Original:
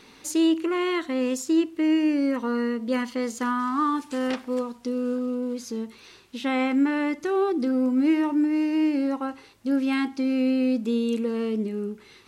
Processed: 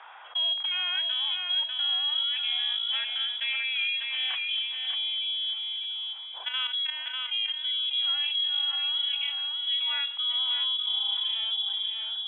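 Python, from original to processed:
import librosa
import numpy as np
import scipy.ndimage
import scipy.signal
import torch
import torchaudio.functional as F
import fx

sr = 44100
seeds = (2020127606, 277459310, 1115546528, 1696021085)

y = fx.freq_invert(x, sr, carrier_hz=3600)
y = scipy.signal.sosfilt(scipy.signal.butter(4, 730.0, 'highpass', fs=sr, output='sos'), y)
y = fx.level_steps(y, sr, step_db=12, at=(5.53, 7.94))
y = fx.env_lowpass(y, sr, base_hz=970.0, full_db=-21.0)
y = fx.echo_feedback(y, sr, ms=596, feedback_pct=20, wet_db=-7)
y = fx.env_flatten(y, sr, amount_pct=50)
y = y * 10.0 ** (-8.5 / 20.0)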